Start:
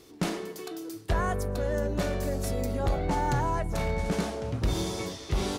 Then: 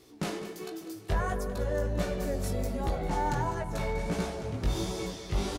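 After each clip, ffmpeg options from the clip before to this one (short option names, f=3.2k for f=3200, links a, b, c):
-af "flanger=delay=15.5:depth=4.9:speed=1.4,aecho=1:1:199|398|597|796|995|1194:0.224|0.123|0.0677|0.0372|0.0205|0.0113"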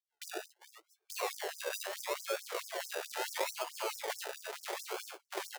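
-af "agate=range=-30dB:threshold=-37dB:ratio=16:detection=peak,acrusher=samples=32:mix=1:aa=0.000001:lfo=1:lforange=19.2:lforate=0.74,afftfilt=real='re*gte(b*sr/1024,320*pow(5100/320,0.5+0.5*sin(2*PI*4.6*pts/sr)))':imag='im*gte(b*sr/1024,320*pow(5100/320,0.5+0.5*sin(2*PI*4.6*pts/sr)))':win_size=1024:overlap=0.75"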